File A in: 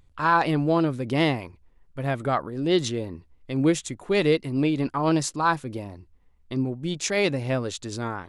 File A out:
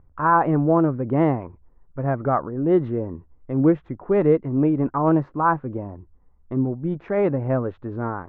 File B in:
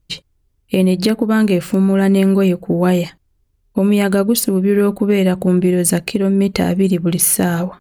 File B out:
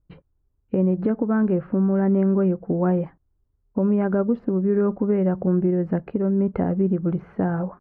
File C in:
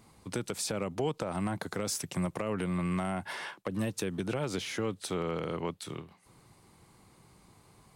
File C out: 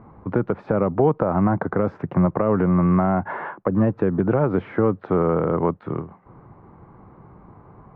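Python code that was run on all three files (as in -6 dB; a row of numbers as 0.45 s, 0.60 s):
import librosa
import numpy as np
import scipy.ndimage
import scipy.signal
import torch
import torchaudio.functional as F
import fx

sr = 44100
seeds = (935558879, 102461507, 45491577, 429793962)

y = scipy.signal.sosfilt(scipy.signal.butter(4, 1400.0, 'lowpass', fs=sr, output='sos'), x)
y = y * 10.0 ** (-22 / 20.0) / np.sqrt(np.mean(np.square(y)))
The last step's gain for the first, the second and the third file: +4.0 dB, -6.5 dB, +14.0 dB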